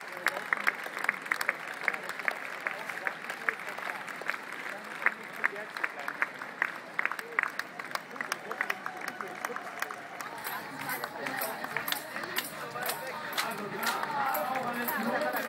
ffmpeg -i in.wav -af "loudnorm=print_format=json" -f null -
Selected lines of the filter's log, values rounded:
"input_i" : "-33.3",
"input_tp" : "-8.8",
"input_lra" : "3.1",
"input_thresh" : "-43.3",